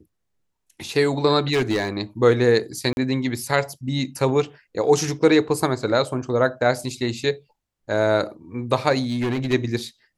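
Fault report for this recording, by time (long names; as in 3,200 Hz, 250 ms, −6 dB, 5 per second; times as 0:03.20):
0:01.52–0:01.89: clipping −16.5 dBFS
0:02.93–0:02.97: drop-out 41 ms
0:09.02–0:09.54: clipping −20 dBFS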